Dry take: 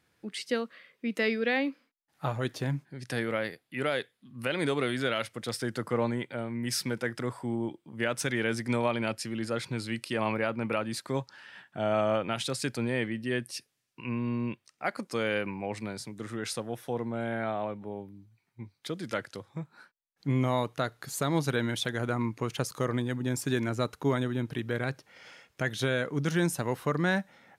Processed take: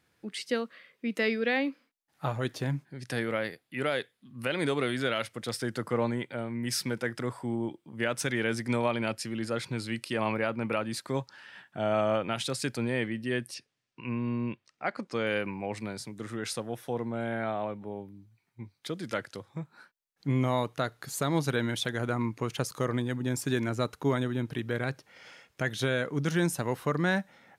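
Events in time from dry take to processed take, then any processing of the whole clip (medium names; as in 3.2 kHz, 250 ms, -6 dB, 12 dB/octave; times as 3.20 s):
13.54–15.27 s: distance through air 87 m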